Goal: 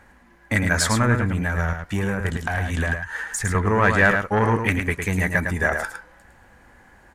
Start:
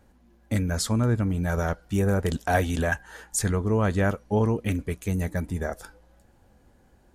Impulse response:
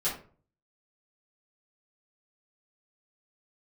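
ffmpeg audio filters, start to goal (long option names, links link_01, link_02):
-filter_complex "[0:a]asoftclip=type=tanh:threshold=-18.5dB,equalizer=frequency=1000:width_type=o:width=1:gain=8,equalizer=frequency=2000:width_type=o:width=1:gain=12,equalizer=frequency=8000:width_type=o:width=1:gain=4,asettb=1/sr,asplit=3[link_01][link_02][link_03];[link_01]atrim=end=1.154[link_04];[link_02]atrim=start=1.15:end=3.55,asetpts=PTS-STARTPTS,afade=type=in:duration=0.004:curve=qsin,afade=type=out:start_time=2.396:duration=0.004:curve=qsin,acrossover=split=170[link_05][link_06];[link_06]acompressor=threshold=-29dB:ratio=10[link_07];[link_05][link_07]amix=inputs=2:normalize=0[link_08];[link_03]atrim=start=3.546[link_09];[link_04][link_08]acrossfade=duration=0.004:curve1=hsin:curve2=qsin[link_10];[link_10][link_09]acrossfade=duration=0.004:curve1=qsin:curve2=hsin,equalizer=frequency=1700:width=3.7:gain=4,aecho=1:1:107:0.501,volume=3dB"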